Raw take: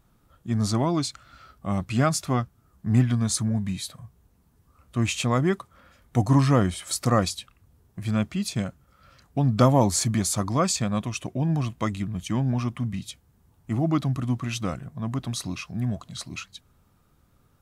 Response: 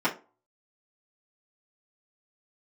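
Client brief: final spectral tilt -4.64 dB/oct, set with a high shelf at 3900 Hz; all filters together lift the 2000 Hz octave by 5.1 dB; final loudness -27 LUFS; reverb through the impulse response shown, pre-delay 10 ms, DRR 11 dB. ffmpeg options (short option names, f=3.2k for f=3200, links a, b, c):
-filter_complex "[0:a]equalizer=f=2k:t=o:g=5,highshelf=f=3.9k:g=5.5,asplit=2[a][b];[1:a]atrim=start_sample=2205,adelay=10[c];[b][c]afir=irnorm=-1:irlink=0,volume=-23.5dB[d];[a][d]amix=inputs=2:normalize=0,volume=-3dB"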